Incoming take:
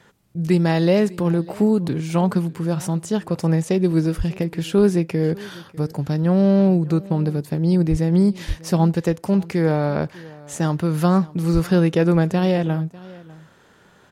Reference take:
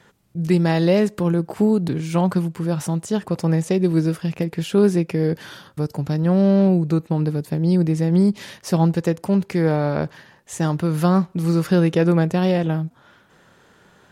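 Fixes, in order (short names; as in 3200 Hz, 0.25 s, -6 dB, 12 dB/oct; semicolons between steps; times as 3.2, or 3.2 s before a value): de-plosive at 4.17/7.9/8.47/11.53; inverse comb 0.598 s -21 dB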